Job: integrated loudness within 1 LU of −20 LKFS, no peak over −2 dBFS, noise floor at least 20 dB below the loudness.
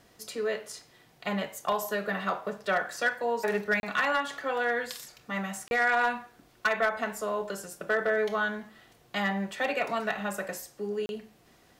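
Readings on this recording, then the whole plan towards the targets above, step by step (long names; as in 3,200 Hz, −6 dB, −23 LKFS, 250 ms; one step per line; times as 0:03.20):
share of clipped samples 0.3%; peaks flattened at −19.0 dBFS; number of dropouts 3; longest dropout 31 ms; integrated loudness −30.0 LKFS; sample peak −19.0 dBFS; target loudness −20.0 LKFS
→ clipped peaks rebuilt −19 dBFS
repair the gap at 0:03.80/0:05.68/0:11.06, 31 ms
level +10 dB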